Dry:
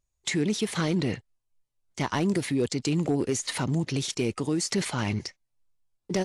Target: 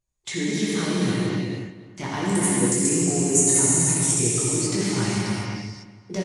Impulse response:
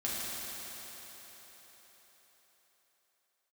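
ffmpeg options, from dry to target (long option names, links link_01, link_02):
-filter_complex "[0:a]asettb=1/sr,asplit=3[link_01][link_02][link_03];[link_01]atrim=end=2.254[link_04];[link_02]atrim=start=2.25:end=4.29,asetpts=PTS-STARTPTS,afade=type=in:duration=0.004:curve=qsin,afade=type=out:start_time=2.036:duration=0.004:curve=qsin,highshelf=frequency=5900:width_type=q:width=3:gain=12.5[link_05];[link_03]atrim=start=4.286[link_06];[link_04][link_05]acrossfade=duration=0.004:curve1=hsin:curve2=qsin[link_07];[link_07][link_06]acrossfade=duration=0.004:curve1=qsin:curve2=hsin,asplit=2[link_08][link_09];[link_09]adelay=290,lowpass=frequency=3400:poles=1,volume=-15dB,asplit=2[link_10][link_11];[link_11]adelay=290,lowpass=frequency=3400:poles=1,volume=0.36,asplit=2[link_12][link_13];[link_13]adelay=290,lowpass=frequency=3400:poles=1,volume=0.36[link_14];[link_08][link_10][link_12][link_14]amix=inputs=4:normalize=0[link_15];[1:a]atrim=start_sample=2205,afade=type=out:start_time=0.34:duration=0.01,atrim=end_sample=15435,asetrate=22932,aresample=44100[link_16];[link_15][link_16]afir=irnorm=-1:irlink=0,volume=-6.5dB"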